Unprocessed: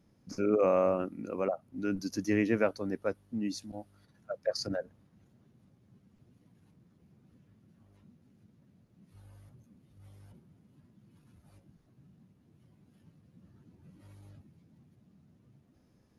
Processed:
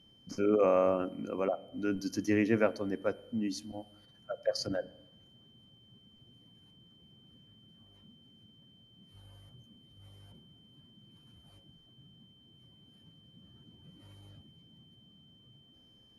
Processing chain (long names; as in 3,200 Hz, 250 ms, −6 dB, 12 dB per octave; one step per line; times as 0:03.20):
steady tone 3,100 Hz −61 dBFS
on a send: convolution reverb RT60 0.85 s, pre-delay 3 ms, DRR 16.5 dB